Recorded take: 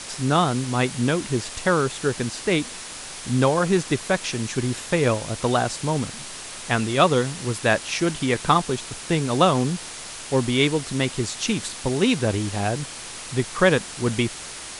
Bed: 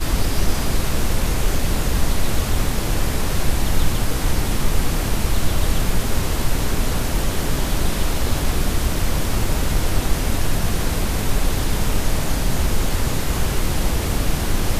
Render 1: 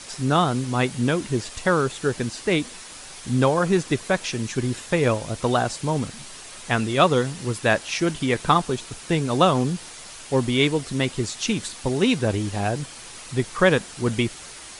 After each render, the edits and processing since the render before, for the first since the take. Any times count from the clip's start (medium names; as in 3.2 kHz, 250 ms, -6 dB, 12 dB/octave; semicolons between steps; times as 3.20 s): noise reduction 6 dB, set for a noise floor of -37 dBFS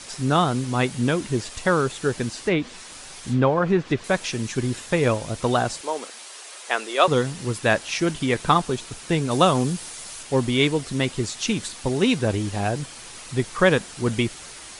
2.30–4.04 s: low-pass that closes with the level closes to 2.5 kHz, closed at -16 dBFS; 5.81–7.08 s: high-pass 390 Hz 24 dB/octave; 9.31–10.23 s: treble shelf 8.3 kHz +9.5 dB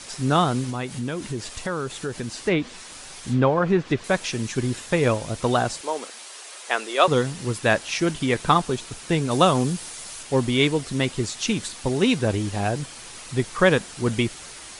0.70–2.36 s: compression 2.5:1, threshold -27 dBFS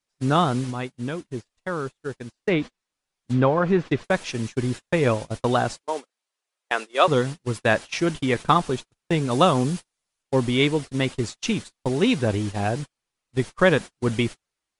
gate -28 dBFS, range -42 dB; treble shelf 5.8 kHz -6.5 dB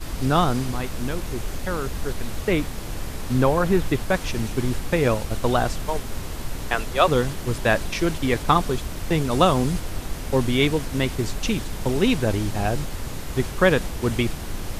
add bed -10.5 dB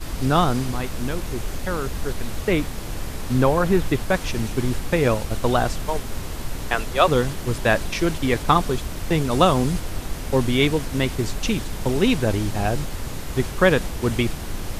trim +1 dB